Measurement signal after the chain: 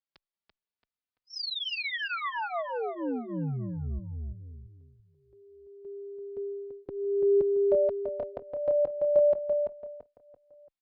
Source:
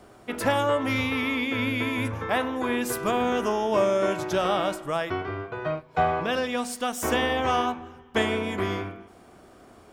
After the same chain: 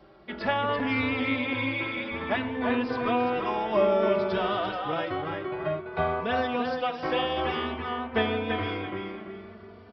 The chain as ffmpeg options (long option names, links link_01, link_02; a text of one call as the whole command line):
ffmpeg -i in.wav -filter_complex "[0:a]asplit=2[link_01][link_02];[link_02]adelay=337,lowpass=frequency=3600:poles=1,volume=-4dB,asplit=2[link_03][link_04];[link_04]adelay=337,lowpass=frequency=3600:poles=1,volume=0.38,asplit=2[link_05][link_06];[link_06]adelay=337,lowpass=frequency=3600:poles=1,volume=0.38,asplit=2[link_07][link_08];[link_08]adelay=337,lowpass=frequency=3600:poles=1,volume=0.38,asplit=2[link_09][link_10];[link_10]adelay=337,lowpass=frequency=3600:poles=1,volume=0.38[link_11];[link_03][link_05][link_07][link_09][link_11]amix=inputs=5:normalize=0[link_12];[link_01][link_12]amix=inputs=2:normalize=0,aresample=11025,aresample=44100,asplit=2[link_13][link_14];[link_14]adelay=3.2,afreqshift=0.55[link_15];[link_13][link_15]amix=inputs=2:normalize=1" out.wav